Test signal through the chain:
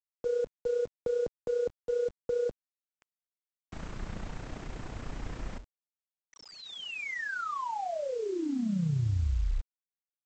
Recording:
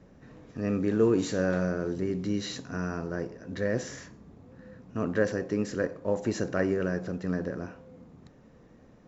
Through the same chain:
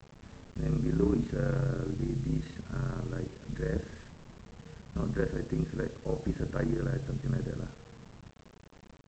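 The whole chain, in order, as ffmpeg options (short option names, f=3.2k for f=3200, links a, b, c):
-filter_complex "[0:a]afreqshift=-48,bass=f=250:g=7,treble=f=4k:g=-15,asplit=2[a][b];[b]asoftclip=type=hard:threshold=-24.5dB,volume=-9.5dB[c];[a][c]amix=inputs=2:normalize=0,adynamicsmooth=sensitivity=1.5:basefreq=3.2k,tremolo=f=30:d=0.621,aresample=16000,acrusher=bits=7:mix=0:aa=0.000001,aresample=44100,volume=-5dB"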